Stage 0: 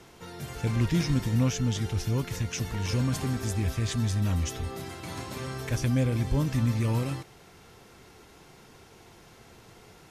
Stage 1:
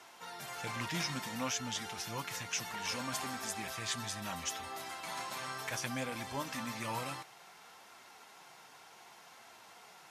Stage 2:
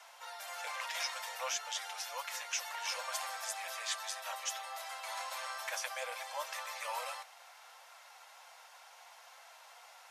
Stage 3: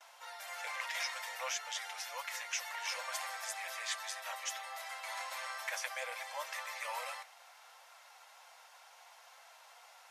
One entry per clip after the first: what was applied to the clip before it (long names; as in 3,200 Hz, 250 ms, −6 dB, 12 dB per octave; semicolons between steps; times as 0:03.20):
high-pass filter 190 Hz 12 dB per octave; low shelf with overshoot 560 Hz −10 dB, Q 1.5; flanger 0.63 Hz, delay 2.8 ms, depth 4.3 ms, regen −55%; level +3 dB
Butterworth high-pass 500 Hz 96 dB per octave
noise gate with hold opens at −49 dBFS; dynamic equaliser 2,000 Hz, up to +6 dB, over −57 dBFS, Q 3; level −2 dB